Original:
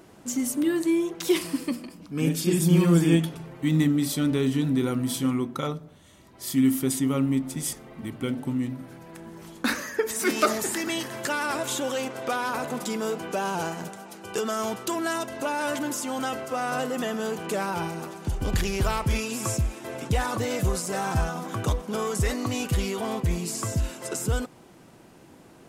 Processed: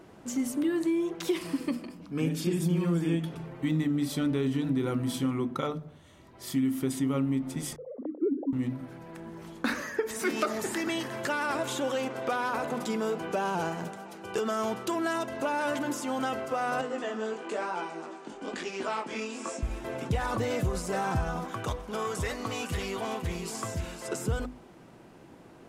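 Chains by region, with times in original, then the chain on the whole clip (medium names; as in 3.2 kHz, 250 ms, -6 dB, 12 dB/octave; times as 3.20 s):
7.76–8.53 s: formants replaced by sine waves + resonant low-pass 530 Hz, resonance Q 4
16.81–19.63 s: elliptic band-pass 250–8300 Hz + chorus 1 Hz, delay 16 ms, depth 7.3 ms
21.45–24.08 s: bass shelf 490 Hz -8.5 dB + delay 510 ms -9 dB
whole clip: hum notches 50/100/150/200/250/300 Hz; compression, threshold -24 dBFS; treble shelf 4.6 kHz -10 dB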